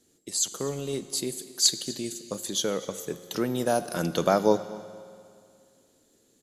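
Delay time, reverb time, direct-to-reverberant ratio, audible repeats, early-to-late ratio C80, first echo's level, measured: 0.245 s, 2.4 s, 11.5 dB, 1, 13.0 dB, -20.0 dB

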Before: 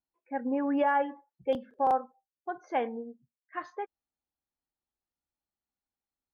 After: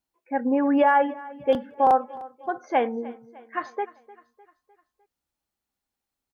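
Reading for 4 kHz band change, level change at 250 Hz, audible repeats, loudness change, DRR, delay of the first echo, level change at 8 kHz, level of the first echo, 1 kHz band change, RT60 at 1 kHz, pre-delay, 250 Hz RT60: +7.5 dB, +7.5 dB, 3, +7.5 dB, none, 0.303 s, n/a, -20.0 dB, +7.5 dB, none, none, none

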